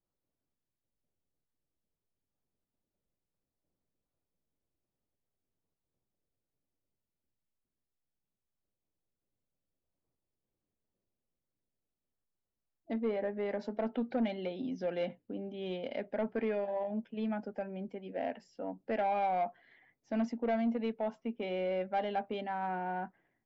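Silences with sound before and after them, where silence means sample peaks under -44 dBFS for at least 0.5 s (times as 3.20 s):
19.49–20.12 s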